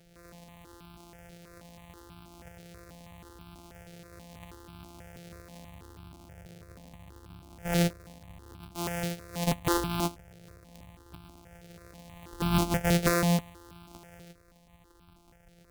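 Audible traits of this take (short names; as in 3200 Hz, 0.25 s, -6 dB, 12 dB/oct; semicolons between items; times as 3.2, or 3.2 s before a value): a buzz of ramps at a fixed pitch in blocks of 256 samples; notches that jump at a steady rate 6.2 Hz 280–1900 Hz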